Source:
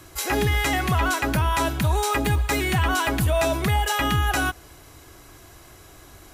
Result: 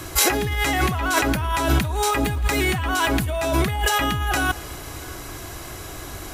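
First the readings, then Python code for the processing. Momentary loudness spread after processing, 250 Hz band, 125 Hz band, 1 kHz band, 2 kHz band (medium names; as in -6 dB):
14 LU, +2.0 dB, -1.5 dB, +1.0 dB, +1.5 dB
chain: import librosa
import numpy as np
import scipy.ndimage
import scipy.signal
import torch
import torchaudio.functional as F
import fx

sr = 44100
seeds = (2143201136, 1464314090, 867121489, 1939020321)

p1 = fx.over_compress(x, sr, threshold_db=-28.0, ratio=-1.0)
p2 = p1 + fx.echo_single(p1, sr, ms=627, db=-23.5, dry=0)
y = p2 * librosa.db_to_amplitude(6.5)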